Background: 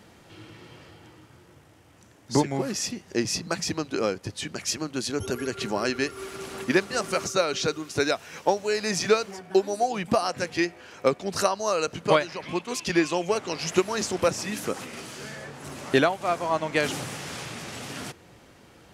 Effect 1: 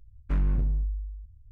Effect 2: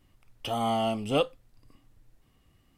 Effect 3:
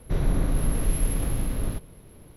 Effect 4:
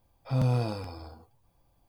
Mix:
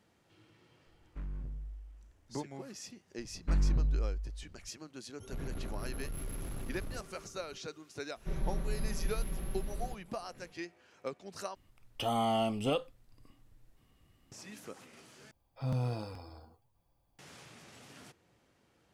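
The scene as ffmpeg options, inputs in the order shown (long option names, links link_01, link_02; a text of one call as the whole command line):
ffmpeg -i bed.wav -i cue0.wav -i cue1.wav -i cue2.wav -i cue3.wav -filter_complex "[1:a]asplit=2[link_01][link_02];[3:a]asplit=2[link_03][link_04];[0:a]volume=-17.5dB[link_05];[link_03]asoftclip=type=tanh:threshold=-25.5dB[link_06];[link_04]aecho=1:1:5.2:0.86[link_07];[2:a]alimiter=limit=-19dB:level=0:latency=1:release=71[link_08];[link_05]asplit=3[link_09][link_10][link_11];[link_09]atrim=end=11.554[link_12];[link_08]atrim=end=2.77,asetpts=PTS-STARTPTS,volume=-2dB[link_13];[link_10]atrim=start=14.316:end=15.314[link_14];[4:a]atrim=end=1.88,asetpts=PTS-STARTPTS,volume=-7.5dB[link_15];[link_11]atrim=start=17.186[link_16];[link_01]atrim=end=1.51,asetpts=PTS-STARTPTS,volume=-16dB,afade=type=in:duration=0.004:curve=hsin,afade=type=out:start_time=1.506:duration=0.004:curve=hsin,adelay=860[link_17];[link_02]atrim=end=1.51,asetpts=PTS-STARTPTS,volume=-3.5dB,afade=type=in:duration=0.004:curve=hsin,afade=type=out:start_time=1.506:duration=0.004:curve=hsin,adelay=3180[link_18];[link_06]atrim=end=2.36,asetpts=PTS-STARTPTS,volume=-10dB,afade=type=in:duration=0.004:curve=hsin,afade=type=out:start_time=2.356:duration=0.004:curve=hsin,adelay=5220[link_19];[link_07]atrim=end=2.36,asetpts=PTS-STARTPTS,volume=-14.5dB,afade=type=in:duration=0.004:curve=hsin,afade=type=out:start_time=2.356:duration=0.004:curve=hsin,adelay=8160[link_20];[link_12][link_13]acrossfade=duration=0.004:curve1=hsin:curve2=hsin[link_21];[link_21][link_14]acrossfade=duration=0.004:curve1=hsin:curve2=hsin[link_22];[link_22][link_15]acrossfade=duration=0.004:curve1=hsin:curve2=hsin[link_23];[link_23][link_16]acrossfade=duration=0.004:curve1=hsin:curve2=hsin[link_24];[link_24][link_17][link_18][link_19][link_20]amix=inputs=5:normalize=0" out.wav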